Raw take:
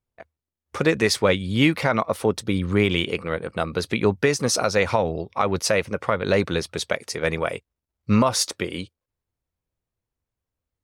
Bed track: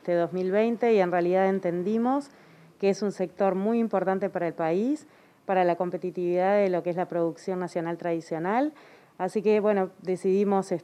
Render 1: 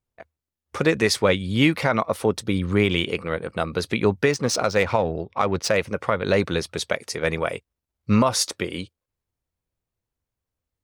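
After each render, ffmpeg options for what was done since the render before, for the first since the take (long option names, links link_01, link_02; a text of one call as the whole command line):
ffmpeg -i in.wav -filter_complex "[0:a]asettb=1/sr,asplit=3[link_01][link_02][link_03];[link_01]atrim=end=4.314[link_04];[link_02]atrim=start=4.31:end=5.77,asetpts=PTS-STARTPTS,afade=type=in:duration=0.004:curve=qsin,afade=type=out:start_time=1.456:duration=0.004:curve=qsin,adynamicsmooth=sensitivity=2.5:basefreq=3400[link_05];[link_03]atrim=start=5.766[link_06];[link_04][link_05]acrossfade=duration=0.004:curve1=hsin:curve2=qsin[link_07];[link_07][link_06]acrossfade=duration=0.004:curve1=qsin:curve2=hsin" out.wav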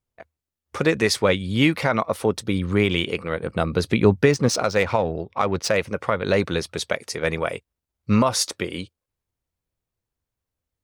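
ffmpeg -i in.wav -filter_complex "[0:a]asettb=1/sr,asplit=3[link_01][link_02][link_03];[link_01]atrim=end=3.434[link_04];[link_02]atrim=start=3.43:end=4.49,asetpts=PTS-STARTPTS,afade=type=in:duration=0.004:curve=qsin,afade=type=out:start_time=1.056:duration=0.004:curve=qsin,lowshelf=frequency=370:gain=7[link_05];[link_03]atrim=start=4.486[link_06];[link_04][link_05]acrossfade=duration=0.004:curve1=hsin:curve2=qsin[link_07];[link_07][link_06]acrossfade=duration=0.004:curve1=qsin:curve2=hsin" out.wav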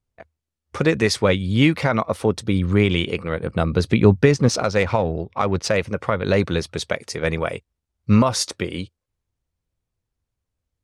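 ffmpeg -i in.wav -af "lowpass=10000,lowshelf=frequency=190:gain=7" out.wav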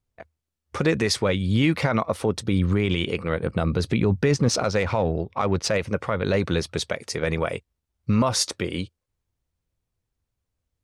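ffmpeg -i in.wav -af "alimiter=limit=-11dB:level=0:latency=1:release=46" out.wav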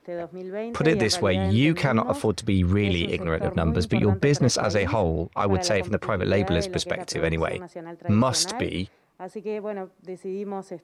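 ffmpeg -i in.wav -i bed.wav -filter_complex "[1:a]volume=-8dB[link_01];[0:a][link_01]amix=inputs=2:normalize=0" out.wav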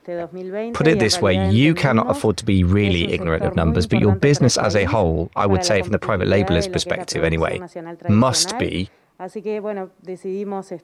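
ffmpeg -i in.wav -af "volume=5.5dB" out.wav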